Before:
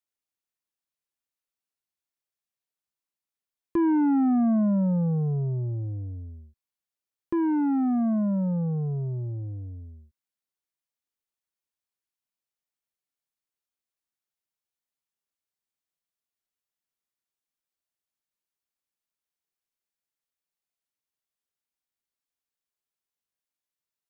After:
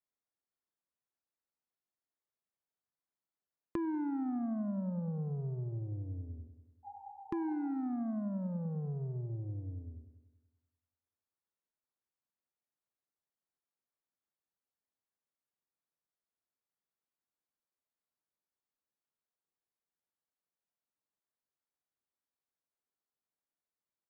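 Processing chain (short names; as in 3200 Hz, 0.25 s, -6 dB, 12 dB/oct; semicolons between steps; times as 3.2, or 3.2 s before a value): Wiener smoothing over 15 samples; low shelf 67 Hz -10 dB; multi-head echo 96 ms, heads first and second, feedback 43%, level -16 dB; compressor 4:1, threshold -37 dBFS, peak gain reduction 14 dB; spectral repair 6.87–7.71, 440–910 Hz after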